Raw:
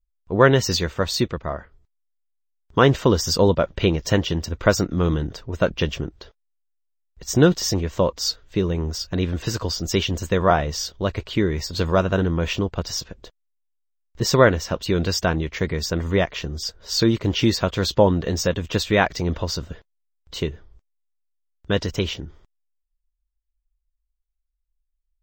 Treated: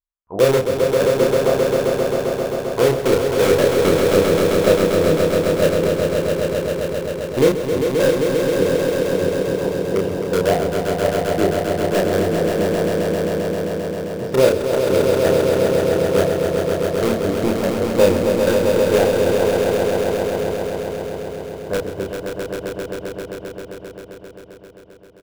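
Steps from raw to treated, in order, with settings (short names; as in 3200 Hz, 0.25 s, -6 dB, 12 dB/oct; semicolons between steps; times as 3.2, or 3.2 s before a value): auto-wah 500–1100 Hz, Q 3.1, down, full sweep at -16 dBFS; RIAA curve playback; in parallel at -6.5 dB: wrapped overs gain 15.5 dB; on the sum: notches 50/100 Hz; doubler 31 ms -3 dB; on a send: swelling echo 0.132 s, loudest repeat 5, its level -5.5 dB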